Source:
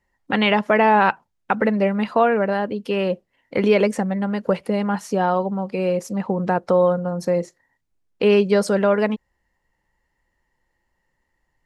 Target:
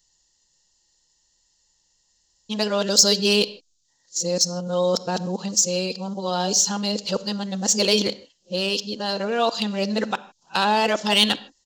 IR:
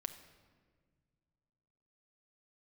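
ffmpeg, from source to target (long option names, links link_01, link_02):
-filter_complex "[0:a]areverse,aresample=16000,aresample=44100,asplit=2[link_01][link_02];[1:a]atrim=start_sample=2205,afade=type=out:start_time=0.21:duration=0.01,atrim=end_sample=9702[link_03];[link_02][link_03]afir=irnorm=-1:irlink=0,volume=3dB[link_04];[link_01][link_04]amix=inputs=2:normalize=0,aexciter=amount=12:drive=9.5:freq=3400,volume=-11.5dB"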